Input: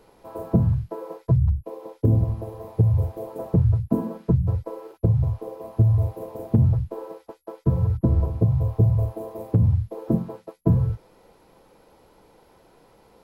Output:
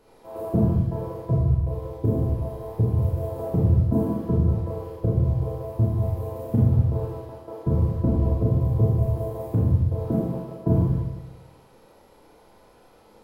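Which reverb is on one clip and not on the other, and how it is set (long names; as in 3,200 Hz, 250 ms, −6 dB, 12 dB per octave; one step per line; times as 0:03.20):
four-comb reverb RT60 1.1 s, combs from 26 ms, DRR −5 dB
level −4.5 dB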